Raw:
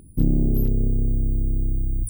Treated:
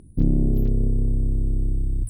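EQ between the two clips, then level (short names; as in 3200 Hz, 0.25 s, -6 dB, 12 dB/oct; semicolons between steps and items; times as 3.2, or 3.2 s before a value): air absorption 53 m; 0.0 dB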